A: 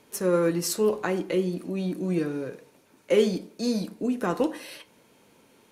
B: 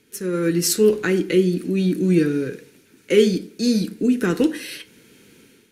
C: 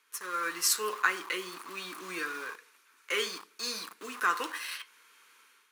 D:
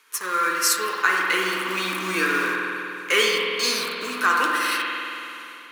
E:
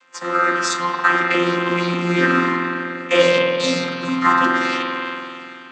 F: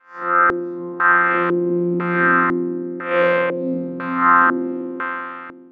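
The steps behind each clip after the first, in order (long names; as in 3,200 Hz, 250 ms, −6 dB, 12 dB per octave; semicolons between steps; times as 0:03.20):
automatic gain control gain up to 10 dB; flat-topped bell 800 Hz −15 dB 1.3 octaves
in parallel at −10 dB: bit reduction 5 bits; on the sum: high-pass with resonance 1,100 Hz, resonance Q 7.2; level −8 dB
speech leveller within 3 dB 0.5 s; spring reverb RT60 2.9 s, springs 48 ms, chirp 70 ms, DRR −1 dB; level +8.5 dB
channel vocoder with a chord as carrier bare fifth, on F3; level +6 dB
spectrum smeared in time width 116 ms; auto-filter low-pass square 1 Hz 360–1,500 Hz; level −2 dB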